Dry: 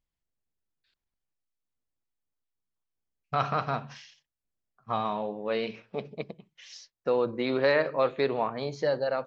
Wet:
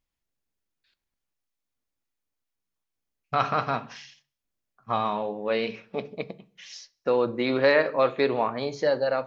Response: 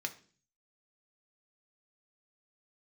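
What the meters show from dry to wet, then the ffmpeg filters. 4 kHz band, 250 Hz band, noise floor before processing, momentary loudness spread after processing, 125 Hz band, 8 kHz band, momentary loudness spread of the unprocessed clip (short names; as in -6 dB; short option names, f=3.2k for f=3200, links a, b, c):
+3.5 dB, +3.5 dB, under -85 dBFS, 21 LU, 0.0 dB, n/a, 21 LU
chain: -filter_complex "[0:a]asplit=2[a][b];[1:a]atrim=start_sample=2205[c];[b][c]afir=irnorm=-1:irlink=0,volume=-4.5dB[d];[a][d]amix=inputs=2:normalize=0"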